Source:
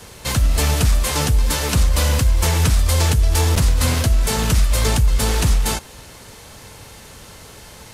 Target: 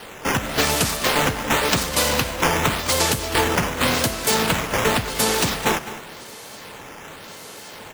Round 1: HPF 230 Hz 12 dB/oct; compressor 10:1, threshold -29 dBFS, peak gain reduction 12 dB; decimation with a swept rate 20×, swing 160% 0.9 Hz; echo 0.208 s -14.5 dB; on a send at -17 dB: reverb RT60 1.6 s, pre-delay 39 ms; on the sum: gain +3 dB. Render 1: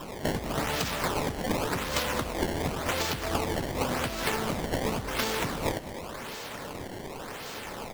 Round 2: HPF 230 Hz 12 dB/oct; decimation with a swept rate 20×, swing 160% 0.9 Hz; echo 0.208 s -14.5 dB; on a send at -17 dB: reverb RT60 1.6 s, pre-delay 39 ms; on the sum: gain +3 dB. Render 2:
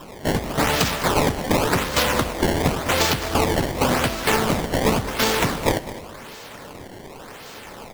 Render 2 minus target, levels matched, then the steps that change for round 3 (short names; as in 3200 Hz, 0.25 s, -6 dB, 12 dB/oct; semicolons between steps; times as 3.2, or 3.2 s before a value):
decimation with a swept rate: distortion +7 dB
change: decimation with a swept rate 6×, swing 160% 0.9 Hz